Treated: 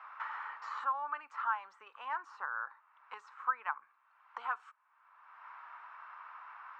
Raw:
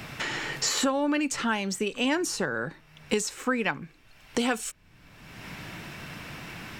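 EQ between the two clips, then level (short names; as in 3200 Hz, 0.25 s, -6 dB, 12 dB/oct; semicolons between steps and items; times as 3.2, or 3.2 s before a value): Butterworth band-pass 1100 Hz, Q 2.6; air absorption 61 m; tilt +4 dB/oct; +1.0 dB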